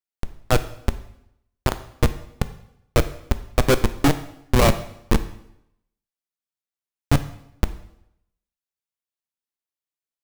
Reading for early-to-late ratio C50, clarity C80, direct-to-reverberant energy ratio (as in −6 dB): 14.0 dB, 16.5 dB, 10.5 dB